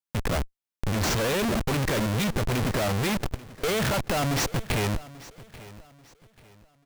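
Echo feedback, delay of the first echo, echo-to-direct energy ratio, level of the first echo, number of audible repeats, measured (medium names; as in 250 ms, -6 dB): 33%, 838 ms, -18.5 dB, -19.0 dB, 2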